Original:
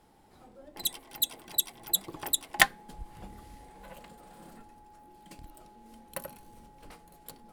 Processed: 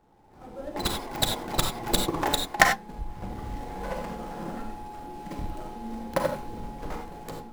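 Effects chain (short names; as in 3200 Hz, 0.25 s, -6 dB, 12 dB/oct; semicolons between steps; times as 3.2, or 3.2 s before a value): median filter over 15 samples; AGC gain up to 16 dB; reverb, pre-delay 33 ms, DRR 3.5 dB; gain -1 dB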